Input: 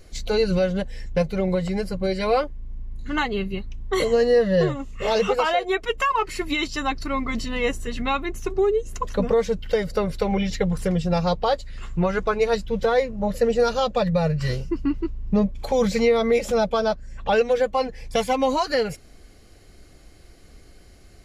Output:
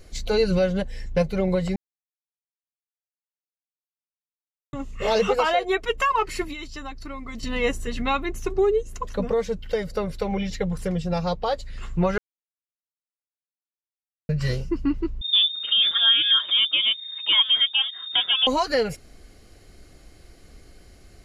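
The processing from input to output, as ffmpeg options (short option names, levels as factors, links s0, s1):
-filter_complex "[0:a]asettb=1/sr,asplit=3[s0][s1][s2];[s0]atrim=end=6.444[s3];[s1]atrim=start=6.44:end=7.43,asetpts=PTS-STARTPTS,afade=t=in:d=0.004:c=qsin,afade=t=out:st=0.986:d=0.004:c=qsin,acrossover=split=98|6900[s4][s5][s6];[s4]acompressor=threshold=0.0126:ratio=4[s7];[s5]acompressor=threshold=0.0158:ratio=4[s8];[s6]acompressor=threshold=0.00112:ratio=4[s9];[s7][s8][s9]amix=inputs=3:normalize=0[s10];[s2]atrim=start=7.426[s11];[s3][s10]acrossfade=d=0.004:c1=hsin:c2=qsin[s12];[s12][s11]acrossfade=d=0.004:c1=qsin:c2=hsin,asettb=1/sr,asplit=3[s13][s14][s15];[s13]atrim=end=15.214[s16];[s14]atrim=start=15.21:end=18.47,asetpts=PTS-STARTPTS,afade=t=in:d=0.004:c=qsin,afade=t=out:st=3.256:d=0.004:c=qsin,lowpass=f=3100:t=q:w=0.5098,lowpass=f=3100:t=q:w=0.6013,lowpass=f=3100:t=q:w=0.9,lowpass=f=3100:t=q:w=2.563,afreqshift=-3700[s17];[s15]atrim=start=18.466[s18];[s16][s17]acrossfade=d=0.004:c1=hsin:c2=qsin[s19];[s19][s18]acrossfade=d=0.004:c1=qsin:c2=hsin,asplit=7[s20][s21][s22][s23][s24][s25][s26];[s20]atrim=end=1.76,asetpts=PTS-STARTPTS,afade=t=out:st=1.756:d=0.004:c=hsin[s27];[s21]atrim=start=1.76:end=4.73,asetpts=PTS-STARTPTS,volume=0[s28];[s22]atrim=start=4.73:end=8.832,asetpts=PTS-STARTPTS,afade=t=in:d=0.004:c=hsin[s29];[s23]atrim=start=8.828:end=11.572,asetpts=PTS-STARTPTS,volume=0.668[s30];[s24]atrim=start=11.568:end=12.18,asetpts=PTS-STARTPTS,afade=t=out:st=0.608:d=0.004:c=hsin[s31];[s25]atrim=start=12.18:end=14.29,asetpts=PTS-STARTPTS,volume=0[s32];[s26]atrim=start=14.29,asetpts=PTS-STARTPTS,afade=t=in:d=0.004:c=hsin[s33];[s27][s28][s29]concat=n=3:v=0:a=1[s34];[s34][s30]acrossfade=d=0.004:c1=hsin:c2=hsin[s35];[s31][s32][s33]concat=n=3:v=0:a=1[s36];[s35][s36]acrossfade=d=0.004:c1=hsin:c2=hsin"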